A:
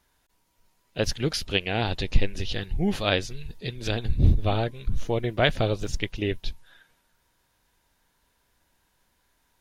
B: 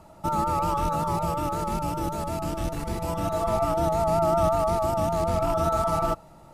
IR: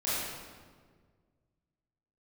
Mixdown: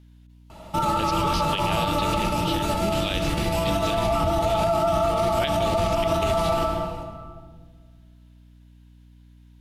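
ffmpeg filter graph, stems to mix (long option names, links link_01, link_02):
-filter_complex "[0:a]highpass=45,volume=-5.5dB,asplit=2[link_01][link_02];[link_02]volume=-21.5dB[link_03];[1:a]adelay=500,volume=2.5dB,asplit=2[link_04][link_05];[link_05]volume=-9.5dB[link_06];[2:a]atrim=start_sample=2205[link_07];[link_03][link_06]amix=inputs=2:normalize=0[link_08];[link_08][link_07]afir=irnorm=-1:irlink=0[link_09];[link_01][link_04][link_09]amix=inputs=3:normalize=0,equalizer=frequency=3100:width_type=o:width=1.1:gain=10.5,aeval=exprs='val(0)+0.00355*(sin(2*PI*60*n/s)+sin(2*PI*2*60*n/s)/2+sin(2*PI*3*60*n/s)/3+sin(2*PI*4*60*n/s)/4+sin(2*PI*5*60*n/s)/5)':channel_layout=same,alimiter=limit=-14dB:level=0:latency=1:release=69"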